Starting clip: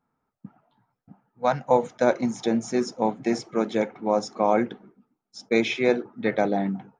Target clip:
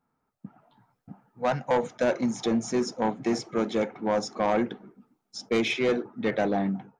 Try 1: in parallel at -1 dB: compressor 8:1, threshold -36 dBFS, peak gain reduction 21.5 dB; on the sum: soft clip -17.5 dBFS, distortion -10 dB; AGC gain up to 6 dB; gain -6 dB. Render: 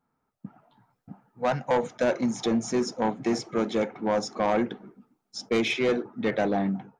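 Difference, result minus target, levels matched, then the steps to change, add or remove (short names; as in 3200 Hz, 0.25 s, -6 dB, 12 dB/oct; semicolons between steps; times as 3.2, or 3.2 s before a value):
compressor: peak gain reduction -7 dB
change: compressor 8:1, threshold -44 dBFS, peak gain reduction 28.5 dB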